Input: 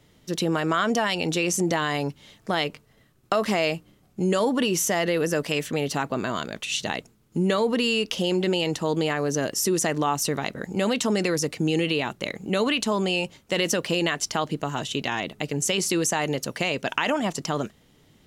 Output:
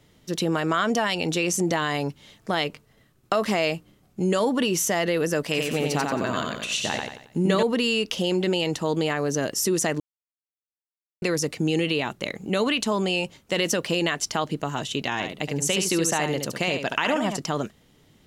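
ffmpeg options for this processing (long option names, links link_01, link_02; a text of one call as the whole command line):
ffmpeg -i in.wav -filter_complex "[0:a]asettb=1/sr,asplit=3[link_01][link_02][link_03];[link_01]atrim=end=5.434[link_04];[link_02]atrim=start=5.43:end=7.63,asetpts=PTS-STARTPTS,afade=type=in:duration=0.004:curve=qsin,afade=type=out:start_time=2.196:duration=0.004:curve=qsin,aecho=1:1:90|180|270|360|450:0.668|0.261|0.102|0.0396|0.0155,atrim=end_sample=97020[link_05];[link_03]atrim=start=7.626[link_06];[link_04][link_05]acrossfade=duration=0.004:curve1=hsin:curve2=qsin[link_07];[link_07][link_06]acrossfade=duration=0.004:curve1=qsin:curve2=hsin,asettb=1/sr,asplit=3[link_08][link_09][link_10];[link_08]atrim=end=15.124[link_11];[link_09]atrim=start=15.12:end=17.37,asetpts=PTS-STARTPTS,afade=type=in:duration=0.004:curve=qsin,afade=type=out:start_time=2.246:duration=0.004:curve=qsin,aecho=1:1:72:0.447,atrim=end_sample=99225[link_12];[link_10]atrim=start=17.366[link_13];[link_11][link_12]acrossfade=duration=0.004:curve1=hsin:curve2=qsin[link_14];[link_14][link_13]acrossfade=duration=0.004:curve1=qsin:curve2=hsin,asplit=3[link_15][link_16][link_17];[link_15]atrim=end=10,asetpts=PTS-STARTPTS,afade=type=out:start_time=9.996:duration=0.004:curve=hsin[link_18];[link_16]atrim=start=10:end=11.22,asetpts=PTS-STARTPTS,volume=0[link_19];[link_17]atrim=start=11.22,asetpts=PTS-STARTPTS,afade=type=in:duration=0.004:curve=hsin[link_20];[link_18][link_19][link_20]concat=n=3:v=0:a=1" out.wav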